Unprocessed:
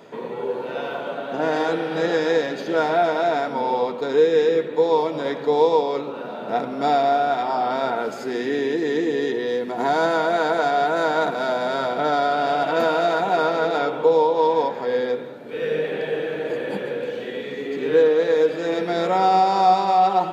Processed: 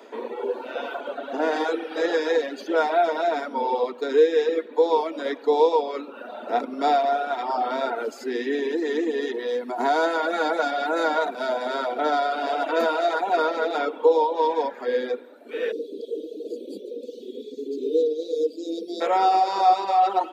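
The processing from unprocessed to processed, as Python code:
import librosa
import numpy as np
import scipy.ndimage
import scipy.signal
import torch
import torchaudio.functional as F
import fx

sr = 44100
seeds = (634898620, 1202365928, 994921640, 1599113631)

y = fx.comb(x, sr, ms=3.6, depth=0.5, at=(10.22, 11.18))
y = fx.ellip_bandstop(y, sr, low_hz=430.0, high_hz=4100.0, order=3, stop_db=70, at=(15.71, 19.0), fade=0.02)
y = scipy.signal.sosfilt(scipy.signal.butter(12, 230.0, 'highpass', fs=sr, output='sos'), y)
y = fx.dereverb_blind(y, sr, rt60_s=1.5)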